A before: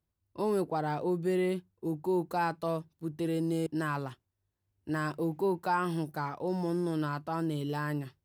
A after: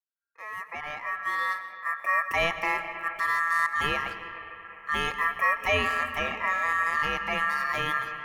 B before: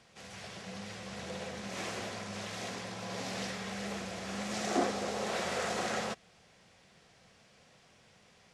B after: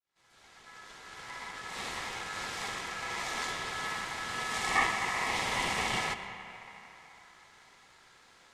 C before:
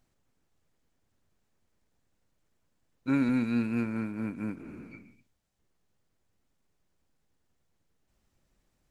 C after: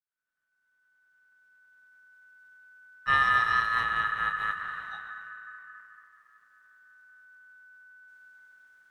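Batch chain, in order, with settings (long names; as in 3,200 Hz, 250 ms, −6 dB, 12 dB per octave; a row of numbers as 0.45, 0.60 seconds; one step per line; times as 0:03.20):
fade in at the beginning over 2.39 s
comb and all-pass reverb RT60 3.6 s, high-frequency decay 0.25×, pre-delay 80 ms, DRR 10 dB
ring modulation 1,500 Hz
normalise the peak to −12 dBFS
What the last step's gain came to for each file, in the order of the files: +7.0, +5.0, +5.5 decibels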